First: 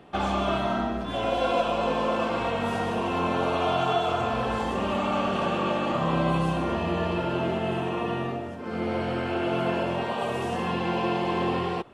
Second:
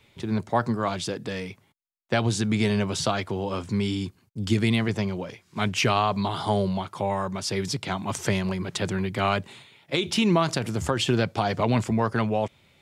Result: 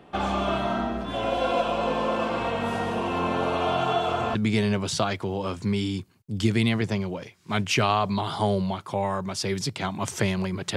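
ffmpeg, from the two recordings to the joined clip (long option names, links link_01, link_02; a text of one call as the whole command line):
ffmpeg -i cue0.wav -i cue1.wav -filter_complex "[0:a]apad=whole_dur=10.76,atrim=end=10.76,atrim=end=4.352[link_01];[1:a]atrim=start=2.418:end=8.83[link_02];[link_01][link_02]acrossfade=duration=0.004:curve1=hsin:curve2=hsin" out.wav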